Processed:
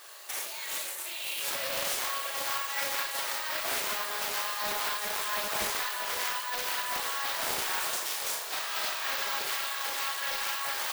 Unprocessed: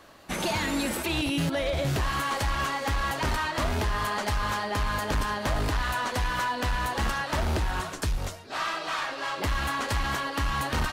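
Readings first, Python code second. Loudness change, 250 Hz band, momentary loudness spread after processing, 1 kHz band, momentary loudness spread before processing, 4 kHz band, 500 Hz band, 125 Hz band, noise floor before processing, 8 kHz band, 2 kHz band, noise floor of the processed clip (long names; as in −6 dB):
−2.0 dB, −20.0 dB, 3 LU, −5.5 dB, 4 LU, +1.0 dB, −7.5 dB, −29.0 dB, −40 dBFS, +4.5 dB, −3.0 dB, −38 dBFS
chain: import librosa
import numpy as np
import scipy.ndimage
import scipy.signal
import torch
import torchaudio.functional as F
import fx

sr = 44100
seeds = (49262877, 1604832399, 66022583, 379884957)

y = scipy.signal.sosfilt(scipy.signal.butter(16, 340.0, 'highpass', fs=sr, output='sos'), x)
y = fx.tilt_eq(y, sr, slope=4.0)
y = fx.over_compress(y, sr, threshold_db=-30.0, ratio=-0.5)
y = 10.0 ** (-21.5 / 20.0) * np.tanh(y / 10.0 ** (-21.5 / 20.0))
y = fx.echo_diffused(y, sr, ms=529, feedback_pct=59, wet_db=-9.0)
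y = fx.rev_schroeder(y, sr, rt60_s=0.36, comb_ms=28, drr_db=0.5)
y = (np.kron(y[::2], np.eye(2)[0]) * 2)[:len(y)]
y = fx.doppler_dist(y, sr, depth_ms=0.59)
y = F.gain(torch.from_numpy(y), -5.5).numpy()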